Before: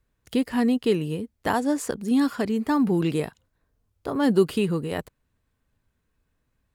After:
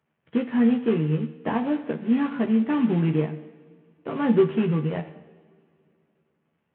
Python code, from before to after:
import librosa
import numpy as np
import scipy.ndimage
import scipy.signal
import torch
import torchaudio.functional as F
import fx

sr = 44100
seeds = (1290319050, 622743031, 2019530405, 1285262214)

y = fx.cvsd(x, sr, bps=16000)
y = scipy.signal.sosfilt(scipy.signal.butter(4, 140.0, 'highpass', fs=sr, output='sos'), y)
y = fx.low_shelf(y, sr, hz=190.0, db=9.5)
y = fx.doubler(y, sr, ms=13.0, db=-3.5)
y = fx.rev_double_slope(y, sr, seeds[0], early_s=0.88, late_s=3.0, knee_db=-18, drr_db=9.0)
y = y * 10.0 ** (-4.0 / 20.0)